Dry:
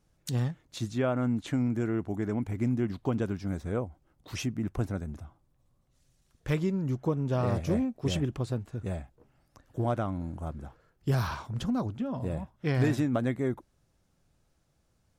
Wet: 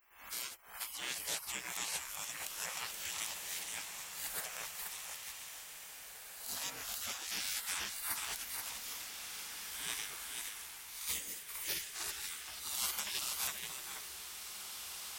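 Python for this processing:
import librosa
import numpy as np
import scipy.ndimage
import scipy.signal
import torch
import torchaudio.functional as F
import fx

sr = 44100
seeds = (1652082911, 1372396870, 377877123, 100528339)

y = fx.spec_swells(x, sr, rise_s=0.54)
y = fx.riaa(y, sr, side='recording')
y = fx.hum_notches(y, sr, base_hz=50, count=9)
y = y + 10.0 ** (-5.5 / 20.0) * np.pad(y, (int(478 * sr / 1000.0), 0))[:len(y)]
y = fx.spec_gate(y, sr, threshold_db=-25, keep='weak')
y = fx.rev_bloom(y, sr, seeds[0], attack_ms=2190, drr_db=5.5)
y = y * librosa.db_to_amplitude(6.5)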